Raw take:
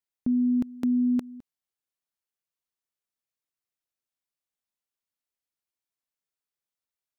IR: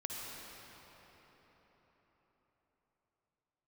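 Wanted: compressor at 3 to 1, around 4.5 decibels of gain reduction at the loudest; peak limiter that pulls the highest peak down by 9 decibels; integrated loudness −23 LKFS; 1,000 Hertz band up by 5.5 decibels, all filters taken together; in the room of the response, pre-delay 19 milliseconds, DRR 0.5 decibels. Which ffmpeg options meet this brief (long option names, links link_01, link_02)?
-filter_complex "[0:a]equalizer=frequency=1000:width_type=o:gain=7,acompressor=threshold=-27dB:ratio=3,alimiter=level_in=3dB:limit=-24dB:level=0:latency=1,volume=-3dB,asplit=2[link_01][link_02];[1:a]atrim=start_sample=2205,adelay=19[link_03];[link_02][link_03]afir=irnorm=-1:irlink=0,volume=-1.5dB[link_04];[link_01][link_04]amix=inputs=2:normalize=0,volume=7dB"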